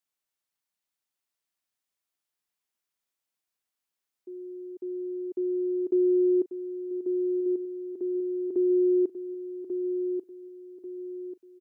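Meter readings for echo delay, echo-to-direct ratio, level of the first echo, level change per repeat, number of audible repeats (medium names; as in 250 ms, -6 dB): 1140 ms, -6.5 dB, -7.0 dB, -8.5 dB, 4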